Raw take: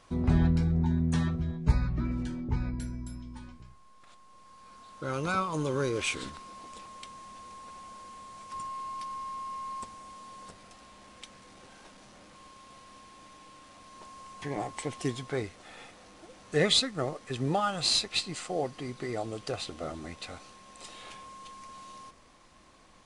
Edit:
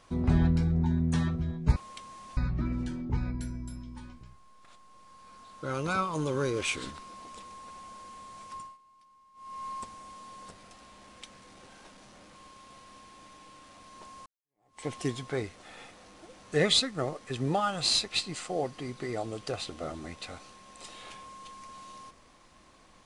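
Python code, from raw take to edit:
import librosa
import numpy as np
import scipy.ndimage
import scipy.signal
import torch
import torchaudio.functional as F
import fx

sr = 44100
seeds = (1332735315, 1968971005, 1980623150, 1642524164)

y = fx.edit(x, sr, fx.move(start_s=6.82, length_s=0.61, to_s=1.76),
    fx.fade_down_up(start_s=8.47, length_s=1.18, db=-22.5, fade_s=0.31),
    fx.fade_in_span(start_s=14.26, length_s=0.59, curve='exp'), tone=tone)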